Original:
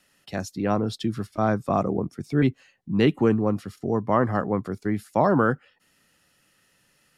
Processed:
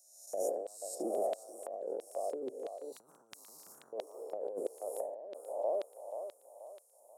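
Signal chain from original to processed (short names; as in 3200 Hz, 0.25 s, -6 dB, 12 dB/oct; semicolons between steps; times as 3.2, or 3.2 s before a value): spectral swells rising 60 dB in 1.04 s; elliptic band-stop 630–8100 Hz, stop band 60 dB; LFO high-pass square 1.5 Hz 530–3900 Hz; on a send: thinning echo 0.483 s, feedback 50%, high-pass 560 Hz, level -14 dB; on the sum: dynamic EQ 1100 Hz, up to -4 dB, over -36 dBFS, Q 1.6; negative-ratio compressor -30 dBFS, ratio -1; HPF 380 Hz 12 dB/oct; 2.92–3.93 spectral compressor 10:1; gain -6.5 dB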